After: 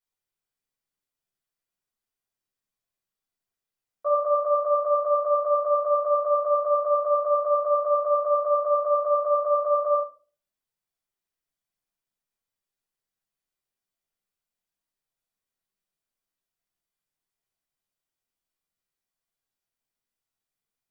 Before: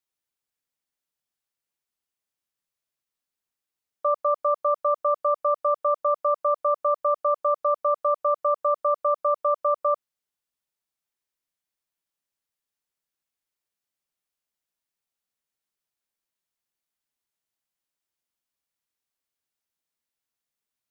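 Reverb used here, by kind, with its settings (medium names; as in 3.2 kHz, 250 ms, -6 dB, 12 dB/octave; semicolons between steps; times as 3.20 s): simulated room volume 220 m³, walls furnished, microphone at 4.8 m; trim -10 dB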